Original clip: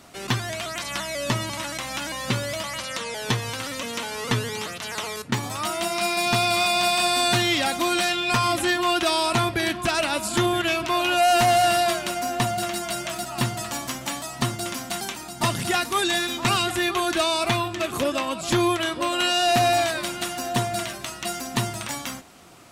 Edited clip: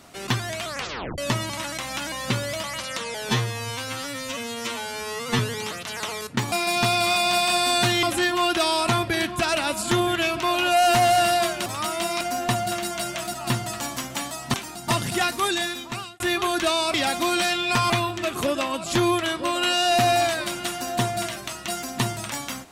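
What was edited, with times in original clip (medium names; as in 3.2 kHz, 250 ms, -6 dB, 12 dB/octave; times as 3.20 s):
0.68 s: tape stop 0.50 s
3.29–4.34 s: stretch 2×
5.47–6.02 s: move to 12.12 s
7.53–8.49 s: move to 17.47 s
14.45–15.07 s: delete
15.94–16.73 s: fade out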